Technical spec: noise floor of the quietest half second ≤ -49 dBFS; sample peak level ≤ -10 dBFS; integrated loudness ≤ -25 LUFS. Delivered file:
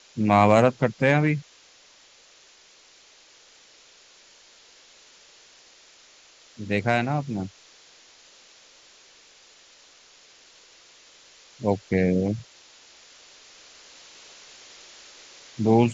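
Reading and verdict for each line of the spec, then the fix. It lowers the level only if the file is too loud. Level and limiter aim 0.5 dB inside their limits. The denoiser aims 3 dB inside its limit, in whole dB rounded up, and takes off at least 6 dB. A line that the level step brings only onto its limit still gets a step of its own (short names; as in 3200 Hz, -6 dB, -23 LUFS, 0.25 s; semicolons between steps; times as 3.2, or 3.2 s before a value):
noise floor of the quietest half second -55 dBFS: OK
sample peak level -4.5 dBFS: fail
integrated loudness -23.0 LUFS: fail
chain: gain -2.5 dB; limiter -10.5 dBFS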